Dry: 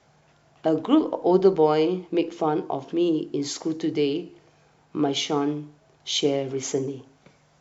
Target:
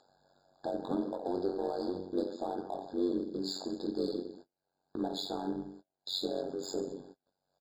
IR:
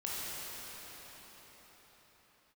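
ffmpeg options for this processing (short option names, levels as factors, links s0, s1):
-filter_complex "[0:a]highpass=420,equalizer=f=440:t=q:w=4:g=-5,equalizer=f=820:t=q:w=4:g=7,equalizer=f=1300:t=q:w=4:g=-7,equalizer=f=2100:t=q:w=4:g=-5,equalizer=f=3400:t=q:w=4:g=-8,lowpass=f=6200:w=0.5412,lowpass=f=6200:w=1.3066,asplit=2[s0][s1];[s1]aecho=0:1:20|48|87.2|142.1|218.9:0.631|0.398|0.251|0.158|0.1[s2];[s0][s2]amix=inputs=2:normalize=0,tremolo=f=93:d=0.974,alimiter=limit=0.126:level=0:latency=1:release=230,asplit=2[s3][s4];[s4]asoftclip=type=hard:threshold=0.0178,volume=0.668[s5];[s3][s5]amix=inputs=2:normalize=0,agate=range=0.0178:threshold=0.00355:ratio=16:detection=peak,acompressor=mode=upward:threshold=0.0224:ratio=2.5,equalizer=f=980:t=o:w=1.2:g=-12,afftfilt=real='re*eq(mod(floor(b*sr/1024/1700),2),0)':imag='im*eq(mod(floor(b*sr/1024/1700),2),0)':win_size=1024:overlap=0.75,volume=0.841"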